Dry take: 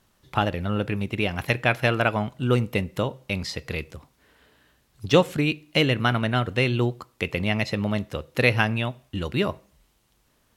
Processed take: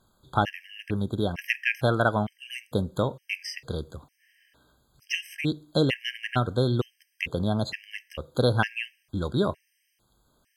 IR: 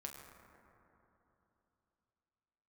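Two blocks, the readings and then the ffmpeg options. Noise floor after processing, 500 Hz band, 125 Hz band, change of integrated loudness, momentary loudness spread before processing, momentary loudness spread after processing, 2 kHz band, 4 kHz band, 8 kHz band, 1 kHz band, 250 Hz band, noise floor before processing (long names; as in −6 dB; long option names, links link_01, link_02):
−73 dBFS, −3.5 dB, −3.5 dB, −3.5 dB, 10 LU, 12 LU, −4.5 dB, −4.5 dB, −2.5 dB, −2.5 dB, −3.5 dB, −66 dBFS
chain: -af "afftfilt=real='re*gt(sin(2*PI*1.1*pts/sr)*(1-2*mod(floor(b*sr/1024/1600),2)),0)':imag='im*gt(sin(2*PI*1.1*pts/sr)*(1-2*mod(floor(b*sr/1024/1600),2)),0)':win_size=1024:overlap=0.75"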